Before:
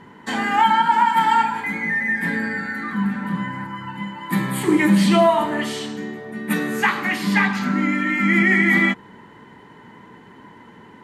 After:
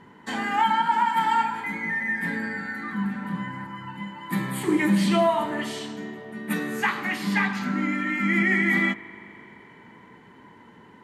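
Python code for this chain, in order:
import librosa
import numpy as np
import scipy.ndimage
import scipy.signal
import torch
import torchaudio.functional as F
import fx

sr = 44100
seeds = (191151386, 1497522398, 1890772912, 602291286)

y = fx.rev_spring(x, sr, rt60_s=3.7, pass_ms=(39,), chirp_ms=75, drr_db=16.0)
y = y * librosa.db_to_amplitude(-5.5)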